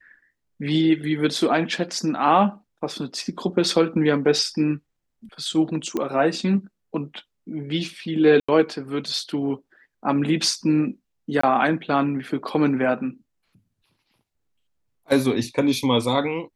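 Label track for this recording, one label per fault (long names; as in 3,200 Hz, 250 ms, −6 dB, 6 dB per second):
5.970000	5.970000	click −13 dBFS
8.400000	8.480000	drop-out 85 ms
11.410000	11.430000	drop-out 24 ms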